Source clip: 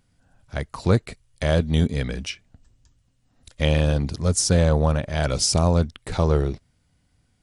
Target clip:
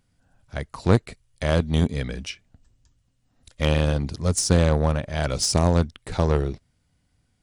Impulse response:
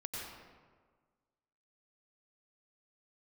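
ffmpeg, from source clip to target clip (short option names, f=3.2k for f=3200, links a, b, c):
-af "aeval=exprs='0.596*(cos(1*acos(clip(val(0)/0.596,-1,1)))-cos(1*PI/2))+0.211*(cos(2*acos(clip(val(0)/0.596,-1,1)))-cos(2*PI/2))+0.015*(cos(7*acos(clip(val(0)/0.596,-1,1)))-cos(7*PI/2))+0.0211*(cos(8*acos(clip(val(0)/0.596,-1,1)))-cos(8*PI/2))':c=same,volume=-1dB"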